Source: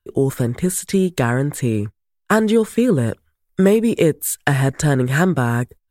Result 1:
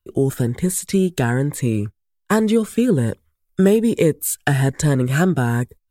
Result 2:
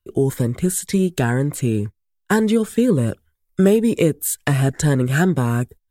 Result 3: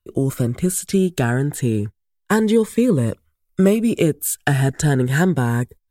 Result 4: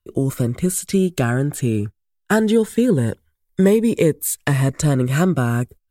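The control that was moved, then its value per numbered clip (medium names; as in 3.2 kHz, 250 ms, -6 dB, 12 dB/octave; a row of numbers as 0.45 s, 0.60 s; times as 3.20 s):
Shepard-style phaser, rate: 1.2 Hz, 2 Hz, 0.31 Hz, 0.21 Hz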